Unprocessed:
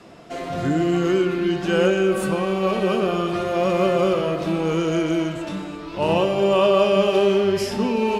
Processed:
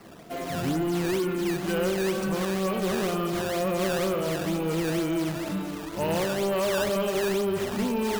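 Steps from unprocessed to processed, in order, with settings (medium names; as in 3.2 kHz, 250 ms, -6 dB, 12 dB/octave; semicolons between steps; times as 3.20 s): peaking EQ 200 Hz +3 dB; in parallel at -2.5 dB: gain riding within 5 dB 0.5 s; on the sum: decimation with a swept rate 12×, swing 160% 2.1 Hz; saturation -12.5 dBFS, distortion -13 dB; trim -9 dB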